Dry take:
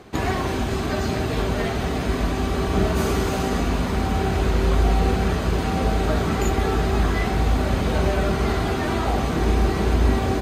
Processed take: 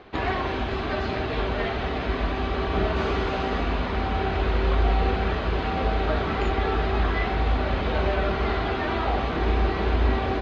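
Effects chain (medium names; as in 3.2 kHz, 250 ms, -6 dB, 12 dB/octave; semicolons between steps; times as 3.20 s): low-pass 3.9 kHz 24 dB/octave; peaking EQ 150 Hz -8.5 dB 2.1 oct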